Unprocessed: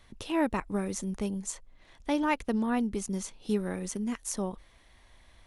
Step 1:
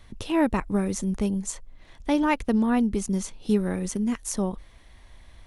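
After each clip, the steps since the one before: low shelf 230 Hz +6.5 dB; gain +3.5 dB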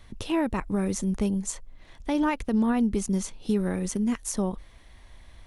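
limiter -16.5 dBFS, peak gain reduction 6.5 dB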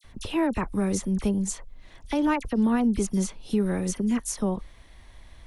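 dispersion lows, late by 43 ms, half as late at 2200 Hz; gain +1 dB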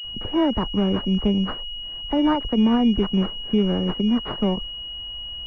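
pulse-width modulation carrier 2900 Hz; gain +4.5 dB

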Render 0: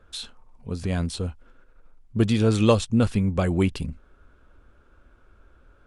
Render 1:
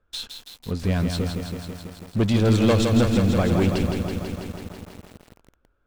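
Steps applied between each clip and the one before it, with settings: LPF 7100 Hz 12 dB/oct; sample leveller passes 3; lo-fi delay 0.164 s, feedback 80%, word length 6-bit, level -5.5 dB; gain -8 dB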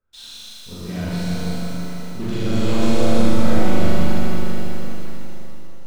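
on a send: flutter echo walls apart 6.8 m, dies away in 1.2 s; on the sum: shimmer reverb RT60 2.7 s, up +7 st, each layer -8 dB, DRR -8 dB; gain -13 dB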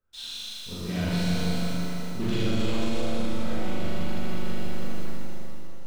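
dynamic EQ 3000 Hz, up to +5 dB, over -46 dBFS, Q 1.3; limiter -13 dBFS, peak gain reduction 11.5 dB; gain -2 dB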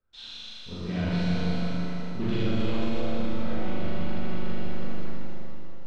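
air absorption 170 m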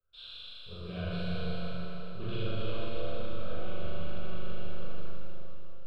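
fixed phaser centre 1300 Hz, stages 8; gain -3.5 dB

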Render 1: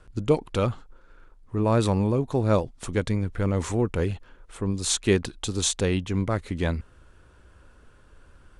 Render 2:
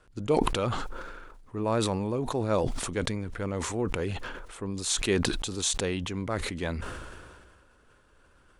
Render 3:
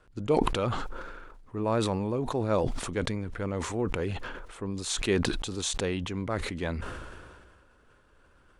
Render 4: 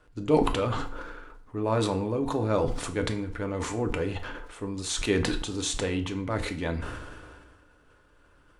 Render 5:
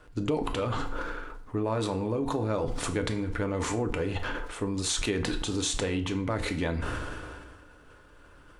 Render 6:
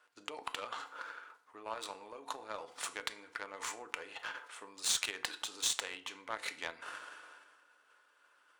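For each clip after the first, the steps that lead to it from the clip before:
low shelf 190 Hz -9 dB; sustainer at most 31 dB/s; gain -3.5 dB
high shelf 5100 Hz -6.5 dB
FDN reverb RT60 0.49 s, low-frequency decay 0.95×, high-frequency decay 0.8×, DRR 5 dB
compressor 6:1, threshold -32 dBFS, peak gain reduction 15.5 dB; gain +6 dB
HPF 920 Hz 12 dB/oct; added harmonics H 7 -21 dB, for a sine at -14.5 dBFS

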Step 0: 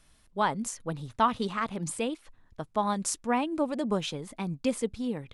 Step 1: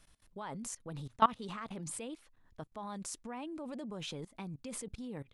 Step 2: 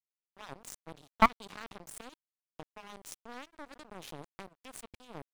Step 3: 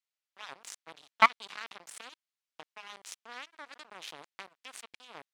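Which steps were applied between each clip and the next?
level quantiser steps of 21 dB
one diode to ground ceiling -30 dBFS; crossover distortion -40 dBFS; gain +8 dB
band-pass 2900 Hz, Q 0.62; gain +6.5 dB

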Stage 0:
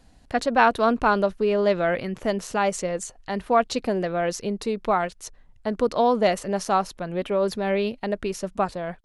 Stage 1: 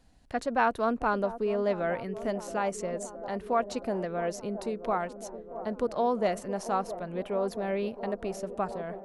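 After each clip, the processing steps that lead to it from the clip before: dynamic EQ 3700 Hz, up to -6 dB, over -44 dBFS, Q 1; band-limited delay 0.669 s, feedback 77%, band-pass 440 Hz, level -12 dB; gain -7 dB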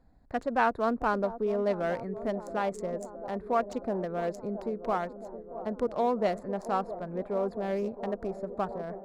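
Wiener smoothing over 15 samples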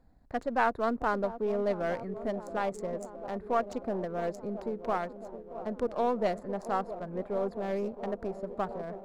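half-wave gain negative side -3 dB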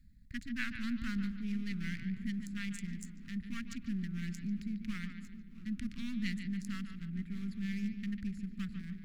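elliptic band-stop 210–2000 Hz, stop band 60 dB; reverse; upward compressor, threshold -53 dBFS; reverse; analogue delay 0.145 s, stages 4096, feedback 36%, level -9 dB; gain +2.5 dB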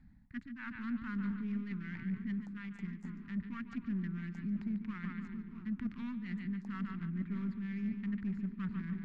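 tilt +3.5 dB/oct; reverse; compressor 6:1, threshold -48 dBFS, peak gain reduction 17.5 dB; reverse; synth low-pass 850 Hz, resonance Q 4.9; gain +14.5 dB

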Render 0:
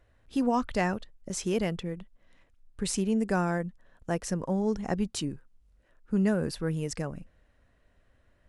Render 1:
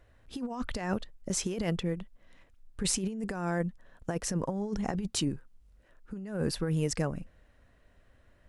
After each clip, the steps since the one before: negative-ratio compressor -30 dBFS, ratio -0.5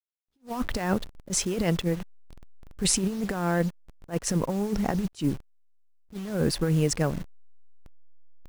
level-crossing sampler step -44 dBFS; attack slew limiter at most 340 dB/s; gain +6 dB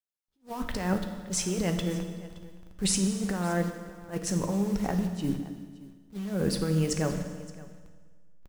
echo 0.57 s -20 dB; on a send at -5 dB: reverb RT60 1.6 s, pre-delay 5 ms; on the sum: gain -4 dB

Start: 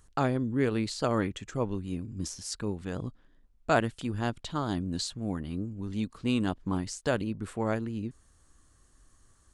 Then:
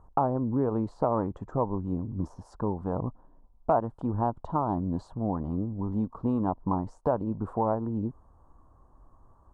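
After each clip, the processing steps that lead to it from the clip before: EQ curve 390 Hz 0 dB, 960 Hz +11 dB, 2200 Hz -30 dB; compressor 2.5:1, threshold -30 dBFS, peak gain reduction 10.5 dB; gain +5 dB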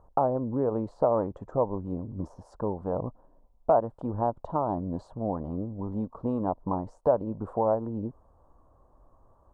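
bell 560 Hz +9 dB 0.81 oct; gain -3.5 dB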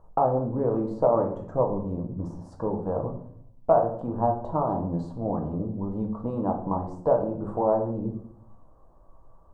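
reverb RT60 0.60 s, pre-delay 6 ms, DRR 2 dB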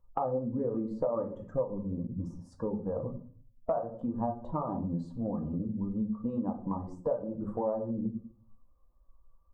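per-bin expansion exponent 1.5; small resonant body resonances 230/520/1200 Hz, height 9 dB; compressor 3:1, threshold -31 dBFS, peak gain reduction 13.5 dB

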